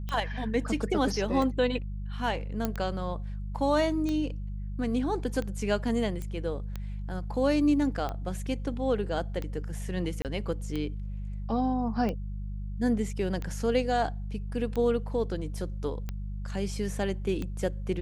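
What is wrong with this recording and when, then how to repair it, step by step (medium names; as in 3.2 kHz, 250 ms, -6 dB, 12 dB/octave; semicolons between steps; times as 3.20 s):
hum 50 Hz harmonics 4 -35 dBFS
tick 45 rpm -21 dBFS
2.65 s: pop -14 dBFS
6.22 s: pop -24 dBFS
10.22–10.25 s: dropout 28 ms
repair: de-click; de-hum 50 Hz, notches 4; interpolate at 10.22 s, 28 ms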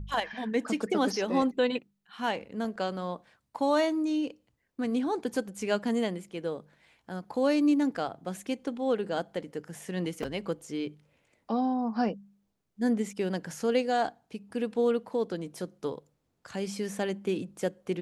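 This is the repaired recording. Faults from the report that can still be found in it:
nothing left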